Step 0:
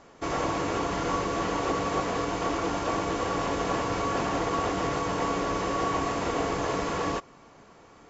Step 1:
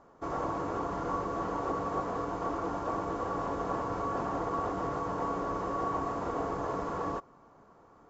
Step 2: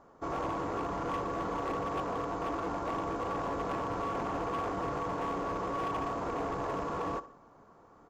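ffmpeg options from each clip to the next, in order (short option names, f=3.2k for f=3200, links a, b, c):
-af "highshelf=f=1.7k:t=q:w=1.5:g=-10,volume=-6dB"
-af "aecho=1:1:67|134|201|268:0.158|0.0682|0.0293|0.0126,volume=29.5dB,asoftclip=hard,volume=-29.5dB"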